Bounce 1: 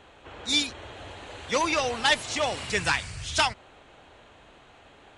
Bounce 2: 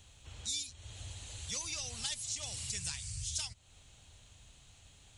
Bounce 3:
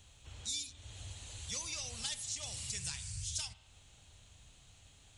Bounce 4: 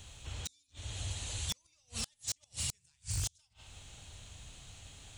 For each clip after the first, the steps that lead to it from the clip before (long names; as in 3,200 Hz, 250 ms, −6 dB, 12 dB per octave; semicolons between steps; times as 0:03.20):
drawn EQ curve 110 Hz 0 dB, 340 Hz −21 dB, 1,600 Hz −19 dB, 6,900 Hz +7 dB; downward compressor 3 to 1, threshold −41 dBFS, peak gain reduction 14.5 dB; level +2 dB
spring reverb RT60 1.1 s, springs 31 ms, chirp 50 ms, DRR 11.5 dB; level −1.5 dB
gate with flip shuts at −30 dBFS, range −38 dB; wave folding −36 dBFS; level +8.5 dB